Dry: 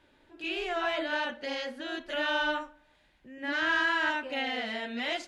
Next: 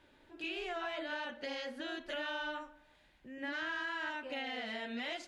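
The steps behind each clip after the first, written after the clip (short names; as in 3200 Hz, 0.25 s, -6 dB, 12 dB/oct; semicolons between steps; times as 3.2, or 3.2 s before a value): compressor 4:1, threshold -37 dBFS, peak gain reduction 11.5 dB; gain -1 dB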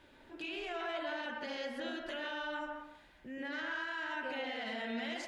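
limiter -37 dBFS, peak gain reduction 8 dB; on a send at -3 dB: reverb RT60 0.60 s, pre-delay 0.114 s; on the sum: gain +3.5 dB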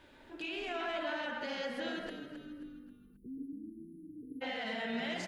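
spectral delete 2.09–4.42, 490–9400 Hz; frequency-shifting echo 0.267 s, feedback 40%, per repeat -50 Hz, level -10 dB; gain +1.5 dB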